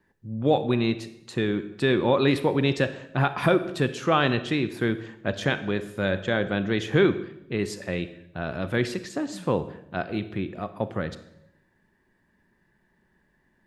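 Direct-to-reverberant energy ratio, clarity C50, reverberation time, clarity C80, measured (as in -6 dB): 11.5 dB, 13.0 dB, 0.80 s, 15.5 dB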